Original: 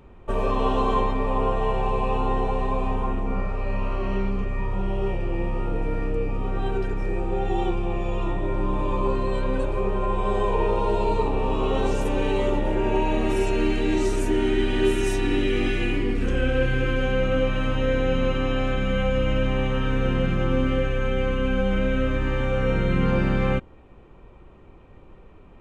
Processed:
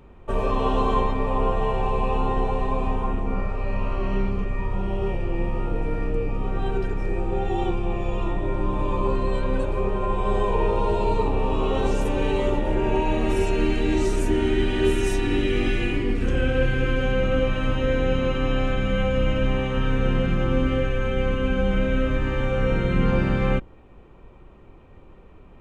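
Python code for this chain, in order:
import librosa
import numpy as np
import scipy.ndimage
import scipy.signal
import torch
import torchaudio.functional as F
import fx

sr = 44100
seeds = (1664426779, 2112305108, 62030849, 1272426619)

y = fx.octave_divider(x, sr, octaves=2, level_db=-5.0)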